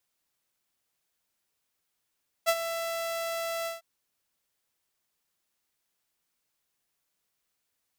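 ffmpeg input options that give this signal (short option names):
-f lavfi -i "aevalsrc='0.141*(2*mod(666*t,1)-1)':d=1.352:s=44100,afade=t=in:d=0.029,afade=t=out:st=0.029:d=0.055:silence=0.282,afade=t=out:st=1.2:d=0.152"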